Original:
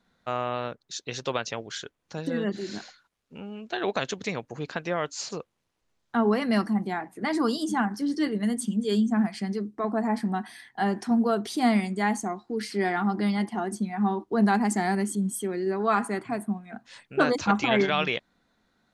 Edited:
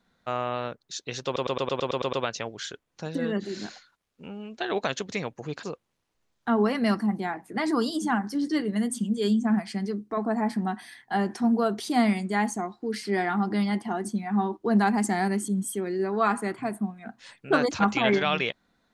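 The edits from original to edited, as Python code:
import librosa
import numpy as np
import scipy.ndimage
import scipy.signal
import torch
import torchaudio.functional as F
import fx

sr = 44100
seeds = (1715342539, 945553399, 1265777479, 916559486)

y = fx.edit(x, sr, fx.stutter(start_s=1.25, slice_s=0.11, count=9),
    fx.cut(start_s=4.75, length_s=0.55), tone=tone)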